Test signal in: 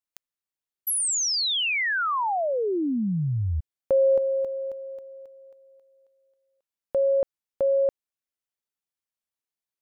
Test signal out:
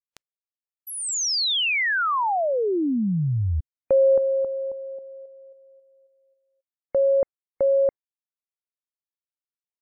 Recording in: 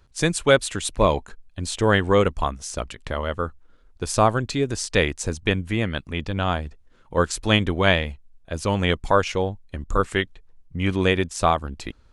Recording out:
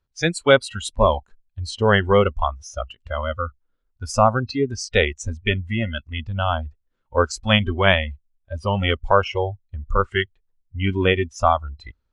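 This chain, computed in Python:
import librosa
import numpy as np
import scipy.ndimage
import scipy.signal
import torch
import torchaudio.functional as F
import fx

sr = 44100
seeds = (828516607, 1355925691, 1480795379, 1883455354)

y = scipy.signal.sosfilt(scipy.signal.butter(2, 6800.0, 'lowpass', fs=sr, output='sos'), x)
y = fx.noise_reduce_blind(y, sr, reduce_db=21)
y = y * 10.0 ** (2.5 / 20.0)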